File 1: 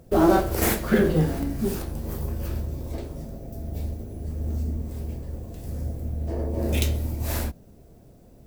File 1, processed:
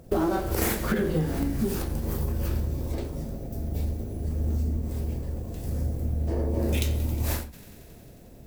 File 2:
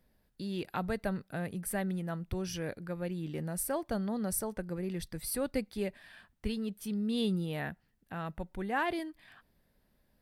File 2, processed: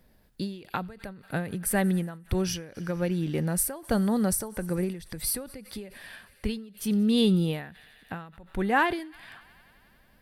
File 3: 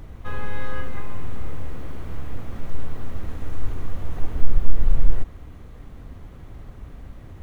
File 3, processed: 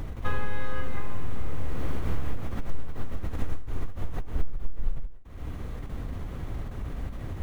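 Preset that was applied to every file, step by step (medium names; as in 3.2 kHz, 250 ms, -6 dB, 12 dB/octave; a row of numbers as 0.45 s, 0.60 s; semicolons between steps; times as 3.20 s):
feedback echo behind a high-pass 90 ms, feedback 83%, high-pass 1.5 kHz, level -22 dB; compression 8:1, threshold -24 dBFS; dynamic bell 650 Hz, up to -5 dB, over -55 dBFS, Q 7.9; endings held to a fixed fall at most 100 dB/s; peak normalisation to -12 dBFS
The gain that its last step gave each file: +3.0 dB, +9.5 dB, +6.5 dB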